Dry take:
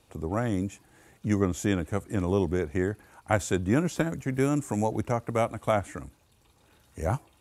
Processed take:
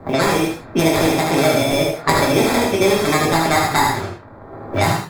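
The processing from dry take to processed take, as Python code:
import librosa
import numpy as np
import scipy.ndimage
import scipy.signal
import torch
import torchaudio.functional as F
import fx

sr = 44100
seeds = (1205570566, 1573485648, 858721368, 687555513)

p1 = fx.speed_glide(x, sr, from_pct=169, to_pct=122)
p2 = fx.dmg_crackle(p1, sr, seeds[0], per_s=310.0, level_db=-51.0)
p3 = fx.high_shelf(p2, sr, hz=2500.0, db=9.0)
p4 = fx.level_steps(p3, sr, step_db=17)
p5 = p3 + (p4 * librosa.db_to_amplitude(-1.0))
p6 = fx.sample_hold(p5, sr, seeds[1], rate_hz=2900.0, jitter_pct=0)
p7 = fx.env_lowpass(p6, sr, base_hz=720.0, full_db=-21.0)
p8 = fx.quant_float(p7, sr, bits=6)
p9 = p8 + fx.echo_single(p8, sr, ms=74, db=-4.5, dry=0)
p10 = fx.rev_gated(p9, sr, seeds[2], gate_ms=150, shape='falling', drr_db=-4.0)
p11 = fx.band_squash(p10, sr, depth_pct=70)
y = p11 * librosa.db_to_amplitude(1.5)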